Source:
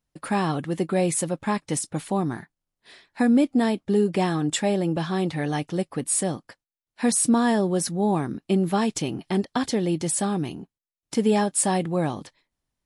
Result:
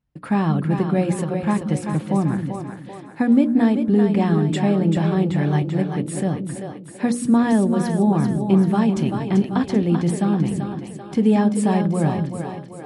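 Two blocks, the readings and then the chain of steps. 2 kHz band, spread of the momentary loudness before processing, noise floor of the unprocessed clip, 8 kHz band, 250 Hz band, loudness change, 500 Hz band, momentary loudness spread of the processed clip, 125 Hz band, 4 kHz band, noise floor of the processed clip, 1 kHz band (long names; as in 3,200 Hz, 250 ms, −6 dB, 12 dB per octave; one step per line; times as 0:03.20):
+0.5 dB, 8 LU, below −85 dBFS, −10.0 dB, +6.0 dB, +4.0 dB, +1.5 dB, 10 LU, +8.5 dB, −4.0 dB, −38 dBFS, +1.5 dB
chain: high-pass filter 42 Hz
bass and treble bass +10 dB, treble −12 dB
mains-hum notches 60/120/180/240/300/360/420/480/540/600 Hz
on a send: echo with a time of its own for lows and highs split 320 Hz, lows 182 ms, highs 388 ms, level −6 dB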